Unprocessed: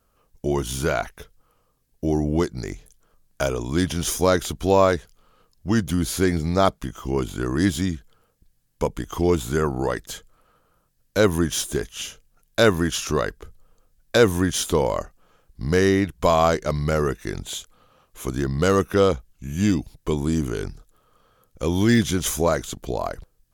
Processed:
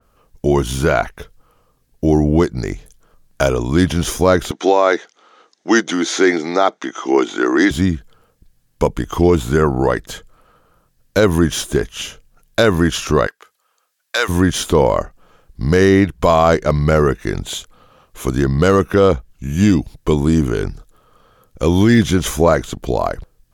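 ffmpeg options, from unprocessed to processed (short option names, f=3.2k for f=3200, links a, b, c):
-filter_complex "[0:a]asettb=1/sr,asplit=3[a][b][c];[a]atrim=end=4.514[d];[b]atrim=start=4.51:end=7.71,asetpts=PTS-STARTPTS,afade=t=in:d=0.004:c=qsin,afade=t=out:st=3.196:d=0.004:c=qsin,highpass=f=280:w=0.5412,highpass=f=280:w=1.3066,equalizer=f=340:t=q:w=4:g=5,equalizer=f=780:t=q:w=4:g=7,equalizer=f=1.4k:t=q:w=4:g=5,equalizer=f=2k:t=q:w=4:g=9,equalizer=f=3.6k:t=q:w=4:g=8,equalizer=f=6.1k:t=q:w=4:g=10,lowpass=f=7.7k:w=0.5412,lowpass=f=7.7k:w=1.3066[e];[c]atrim=start=7.706[f];[d][e]acrossfade=d=0.004:c1=hsin:c2=qsin[g];[g][f]acrossfade=d=0.004:c1=qsin:c2=hsin,asplit=3[h][i][j];[h]afade=t=out:st=13.26:d=0.02[k];[i]highpass=1.1k,afade=t=in:st=13.26:d=0.02,afade=t=out:st=14.28:d=0.02[l];[j]afade=t=in:st=14.28:d=0.02[m];[k][l][m]amix=inputs=3:normalize=0,highshelf=f=5.6k:g=-5,alimiter=level_in=9.5dB:limit=-1dB:release=50:level=0:latency=1,adynamicequalizer=threshold=0.0224:dfrequency=3000:dqfactor=0.7:tfrequency=3000:tqfactor=0.7:attack=5:release=100:ratio=0.375:range=3:mode=cutabove:tftype=highshelf,volume=-1dB"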